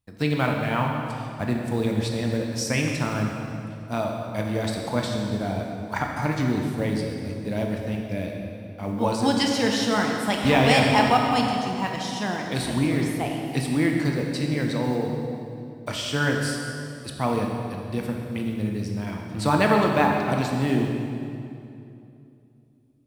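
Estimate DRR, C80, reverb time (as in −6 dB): 0.5 dB, 3.0 dB, 2.7 s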